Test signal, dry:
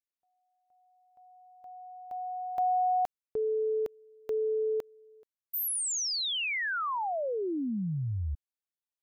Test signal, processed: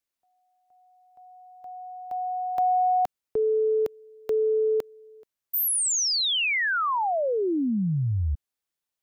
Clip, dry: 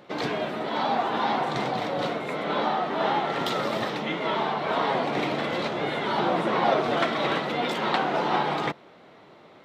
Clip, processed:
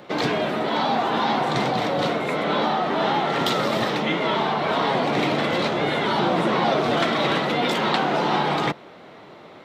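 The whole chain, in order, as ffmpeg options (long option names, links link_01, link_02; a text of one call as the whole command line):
ffmpeg -i in.wav -filter_complex "[0:a]acrossover=split=270|3100[link_01][link_02][link_03];[link_02]acompressor=threshold=-28dB:ratio=2.5:attack=2.1:release=71:knee=2.83:detection=peak[link_04];[link_01][link_04][link_03]amix=inputs=3:normalize=0,volume=7dB" out.wav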